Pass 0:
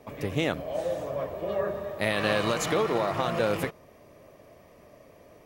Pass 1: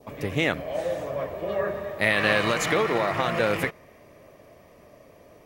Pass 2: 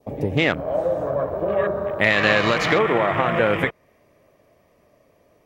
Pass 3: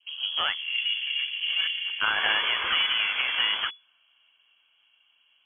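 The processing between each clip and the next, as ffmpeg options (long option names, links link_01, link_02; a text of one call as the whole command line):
ffmpeg -i in.wav -af "adynamicequalizer=threshold=0.00501:dfrequency=2000:dqfactor=1.7:tfrequency=2000:tqfactor=1.7:attack=5:release=100:ratio=0.375:range=4:mode=boostabove:tftype=bell,volume=1.5dB" out.wav
ffmpeg -i in.wav -filter_complex "[0:a]afwtdn=0.0178,asplit=2[link_01][link_02];[link_02]acompressor=threshold=-32dB:ratio=6,volume=3dB[link_03];[link_01][link_03]amix=inputs=2:normalize=0,volume=2dB" out.wav
ffmpeg -i in.wav -af "aeval=exprs='0.891*(cos(1*acos(clip(val(0)/0.891,-1,1)))-cos(1*PI/2))+0.126*(cos(6*acos(clip(val(0)/0.891,-1,1)))-cos(6*PI/2))+0.02*(cos(8*acos(clip(val(0)/0.891,-1,1)))-cos(8*PI/2))':channel_layout=same,lowpass=frequency=2900:width_type=q:width=0.5098,lowpass=frequency=2900:width_type=q:width=0.6013,lowpass=frequency=2900:width_type=q:width=0.9,lowpass=frequency=2900:width_type=q:width=2.563,afreqshift=-3400,volume=-6.5dB" out.wav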